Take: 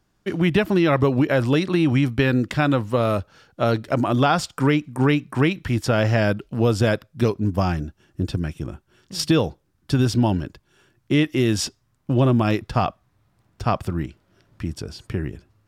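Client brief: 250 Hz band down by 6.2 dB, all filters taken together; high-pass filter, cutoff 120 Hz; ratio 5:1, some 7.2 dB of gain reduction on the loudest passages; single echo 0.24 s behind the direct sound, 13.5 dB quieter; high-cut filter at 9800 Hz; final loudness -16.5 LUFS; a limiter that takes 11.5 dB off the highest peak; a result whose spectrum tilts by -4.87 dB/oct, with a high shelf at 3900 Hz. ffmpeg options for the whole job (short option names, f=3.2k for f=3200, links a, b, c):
-af "highpass=120,lowpass=9.8k,equalizer=f=250:t=o:g=-8,highshelf=f=3.9k:g=6,acompressor=threshold=-24dB:ratio=5,alimiter=limit=-19dB:level=0:latency=1,aecho=1:1:240:0.211,volume=15.5dB"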